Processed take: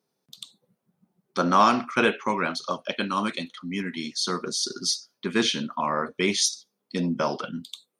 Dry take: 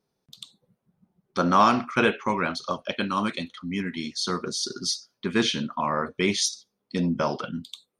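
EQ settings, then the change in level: high-pass 160 Hz 12 dB/octave; treble shelf 6.7 kHz +5 dB; 0.0 dB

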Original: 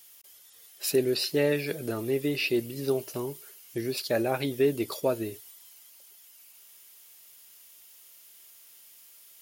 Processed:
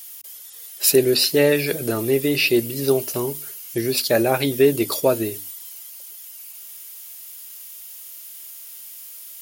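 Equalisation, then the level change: treble shelf 6.3 kHz +7.5 dB; hum notches 50/100/150/200/250/300 Hz; +8.5 dB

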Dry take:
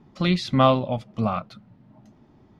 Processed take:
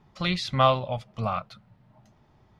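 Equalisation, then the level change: peaking EQ 270 Hz -13 dB 1.3 oct; 0.0 dB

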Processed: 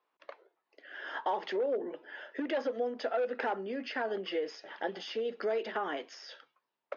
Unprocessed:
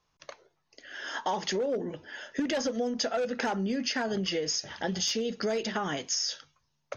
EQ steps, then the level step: high-pass 320 Hz 24 dB/octave; distance through air 400 m; 0.0 dB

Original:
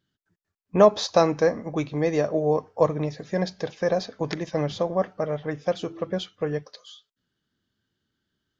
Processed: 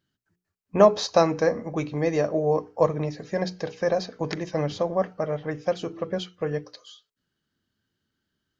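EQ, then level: hum notches 60/120/180/240/300/360/420/480 Hz; band-stop 3.5 kHz, Q 12; 0.0 dB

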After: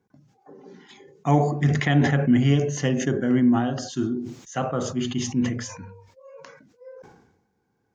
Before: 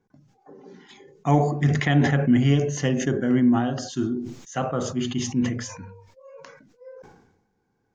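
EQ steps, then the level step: high-pass 47 Hz; 0.0 dB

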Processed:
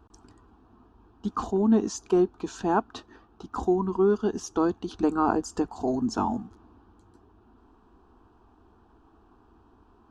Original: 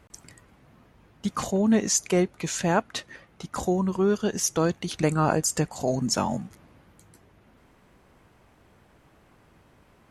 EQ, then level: tape spacing loss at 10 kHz 27 dB; static phaser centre 560 Hz, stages 6; +4.5 dB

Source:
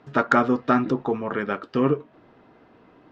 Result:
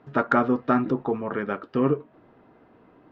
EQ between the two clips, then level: low-pass 1.9 kHz 6 dB/octave; -1.0 dB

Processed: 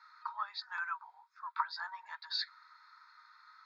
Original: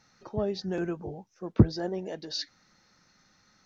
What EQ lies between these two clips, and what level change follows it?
boxcar filter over 15 samples; rippled Chebyshev high-pass 920 Hz, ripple 6 dB; distance through air 74 m; +16.5 dB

